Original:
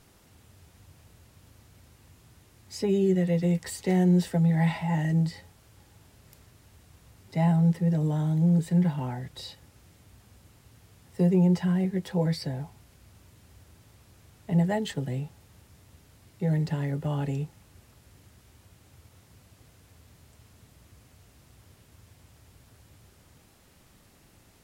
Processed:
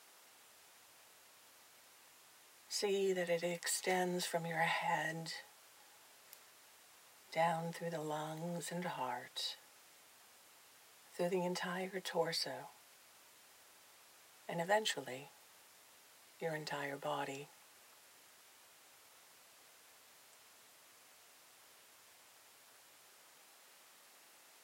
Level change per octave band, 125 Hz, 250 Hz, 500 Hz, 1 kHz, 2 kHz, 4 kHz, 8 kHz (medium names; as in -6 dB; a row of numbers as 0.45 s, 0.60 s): -24.5 dB, -21.0 dB, -8.0 dB, -1.5 dB, 0.0 dB, 0.0 dB, 0.0 dB